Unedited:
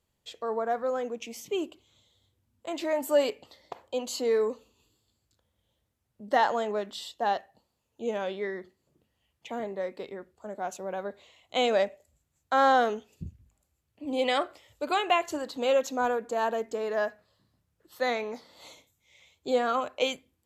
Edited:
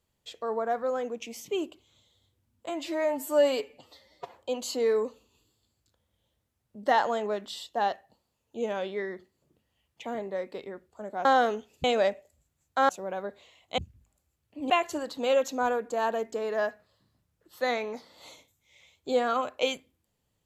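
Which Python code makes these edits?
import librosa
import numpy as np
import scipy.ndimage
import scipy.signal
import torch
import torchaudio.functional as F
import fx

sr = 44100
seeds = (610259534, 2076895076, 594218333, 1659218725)

y = fx.edit(x, sr, fx.stretch_span(start_s=2.69, length_s=1.1, factor=1.5),
    fx.swap(start_s=10.7, length_s=0.89, other_s=12.64, other_length_s=0.59),
    fx.cut(start_s=14.15, length_s=0.94), tone=tone)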